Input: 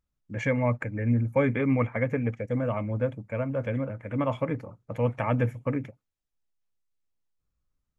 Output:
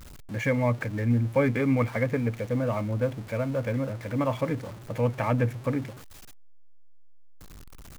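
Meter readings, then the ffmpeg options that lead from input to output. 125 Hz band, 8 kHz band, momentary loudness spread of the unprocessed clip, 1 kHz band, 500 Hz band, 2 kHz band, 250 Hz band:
+1.0 dB, n/a, 7 LU, +1.0 dB, +0.5 dB, +1.0 dB, +1.0 dB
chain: -af "aeval=exprs='val(0)+0.5*0.0119*sgn(val(0))':c=same"

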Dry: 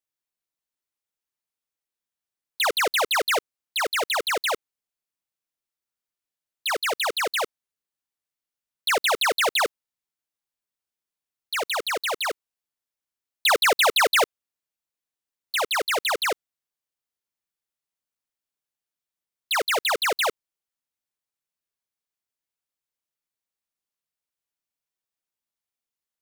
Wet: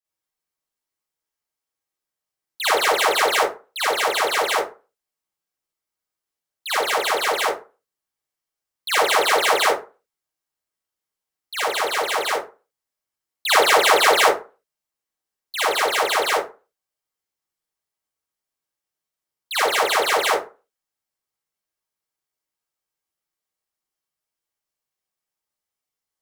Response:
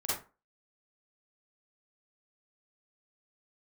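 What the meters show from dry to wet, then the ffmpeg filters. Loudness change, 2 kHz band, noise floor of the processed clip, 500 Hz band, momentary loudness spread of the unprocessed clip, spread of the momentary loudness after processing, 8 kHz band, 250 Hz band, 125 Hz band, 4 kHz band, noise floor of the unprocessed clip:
+4.0 dB, +3.5 dB, under -85 dBFS, +5.5 dB, 10 LU, 13 LU, +3.5 dB, +5.0 dB, n/a, +2.0 dB, under -85 dBFS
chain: -filter_complex "[1:a]atrim=start_sample=2205[a];[0:a][a]afir=irnorm=-1:irlink=0,volume=-1dB"

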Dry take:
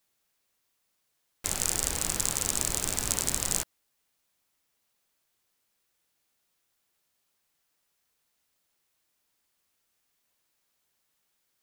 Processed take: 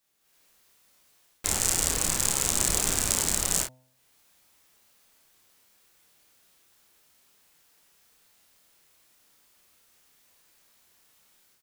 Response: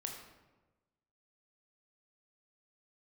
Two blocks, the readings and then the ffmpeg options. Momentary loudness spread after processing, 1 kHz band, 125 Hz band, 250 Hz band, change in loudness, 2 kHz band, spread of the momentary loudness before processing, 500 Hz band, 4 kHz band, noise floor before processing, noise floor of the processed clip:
5 LU, +3.5 dB, +3.0 dB, +3.5 dB, +3.5 dB, +4.0 dB, 5 LU, +3.5 dB, +3.5 dB, -77 dBFS, -67 dBFS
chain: -filter_complex "[0:a]bandreject=f=128.2:t=h:w=4,bandreject=f=256.4:t=h:w=4,bandreject=f=384.6:t=h:w=4,bandreject=f=512.8:t=h:w=4,bandreject=f=641:t=h:w=4,bandreject=f=769.2:t=h:w=4,bandreject=f=897.4:t=h:w=4,bandreject=f=1.0256k:t=h:w=4,dynaudnorm=f=180:g=3:m=12dB,asplit=2[a][b];[b]aecho=0:1:30|53:0.668|0.422[c];[a][c]amix=inputs=2:normalize=0,volume=-1dB"

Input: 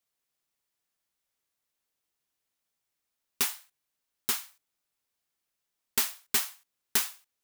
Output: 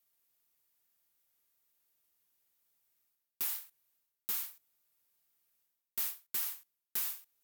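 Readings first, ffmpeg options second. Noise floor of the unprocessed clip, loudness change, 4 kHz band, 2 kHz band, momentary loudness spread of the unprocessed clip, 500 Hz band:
-84 dBFS, -6.5 dB, -12.5 dB, -13.5 dB, 8 LU, -16.5 dB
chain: -af "equalizer=f=15k:w=0.9:g=14,areverse,acompressor=threshold=-36dB:ratio=4,areverse"

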